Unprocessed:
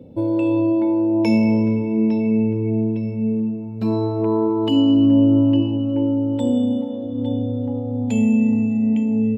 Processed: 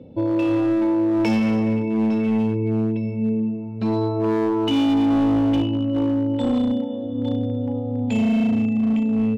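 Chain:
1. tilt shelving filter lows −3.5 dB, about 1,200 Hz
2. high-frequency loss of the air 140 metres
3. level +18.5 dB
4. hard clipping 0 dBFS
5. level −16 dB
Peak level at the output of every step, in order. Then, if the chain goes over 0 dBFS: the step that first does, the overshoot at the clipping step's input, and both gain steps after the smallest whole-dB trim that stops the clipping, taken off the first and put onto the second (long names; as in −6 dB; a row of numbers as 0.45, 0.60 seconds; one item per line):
−8.5, −9.0, +9.5, 0.0, −16.0 dBFS
step 3, 9.5 dB
step 3 +8.5 dB, step 5 −6 dB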